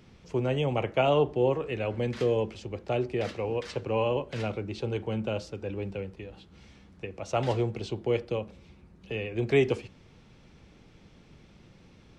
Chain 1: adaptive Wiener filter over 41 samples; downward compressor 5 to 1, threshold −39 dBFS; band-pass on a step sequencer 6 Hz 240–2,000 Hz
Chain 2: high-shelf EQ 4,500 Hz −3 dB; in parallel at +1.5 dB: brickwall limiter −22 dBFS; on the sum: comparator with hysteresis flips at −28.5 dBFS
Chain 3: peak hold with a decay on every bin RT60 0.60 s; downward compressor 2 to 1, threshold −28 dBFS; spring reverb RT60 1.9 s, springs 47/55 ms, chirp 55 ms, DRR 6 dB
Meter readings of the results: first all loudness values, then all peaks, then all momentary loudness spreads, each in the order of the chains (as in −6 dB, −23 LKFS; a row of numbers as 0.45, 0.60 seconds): −52.5, −28.0, −31.0 LKFS; −31.0, −19.5, −15.0 dBFS; 13, 6, 14 LU